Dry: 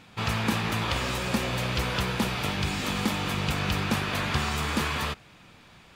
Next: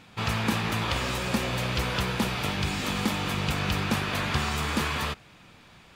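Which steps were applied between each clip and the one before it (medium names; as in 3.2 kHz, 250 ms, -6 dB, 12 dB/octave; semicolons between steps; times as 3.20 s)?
no audible change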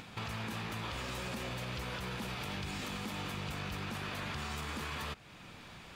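upward compressor, threshold -46 dBFS; peak limiter -24.5 dBFS, peak gain reduction 11.5 dB; compression 2:1, threshold -42 dBFS, peak gain reduction 7 dB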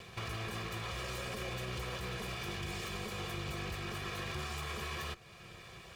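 comb filter that takes the minimum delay 1.7 ms; comb of notches 300 Hz; small resonant body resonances 350/2400 Hz, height 11 dB, ringing for 90 ms; trim +1.5 dB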